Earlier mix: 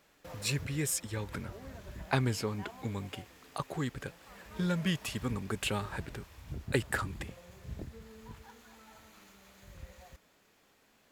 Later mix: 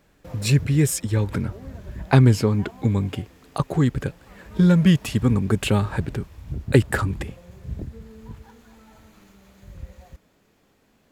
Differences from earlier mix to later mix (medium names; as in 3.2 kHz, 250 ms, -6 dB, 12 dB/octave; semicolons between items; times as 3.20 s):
speech +6.5 dB; master: add bass shelf 490 Hz +11.5 dB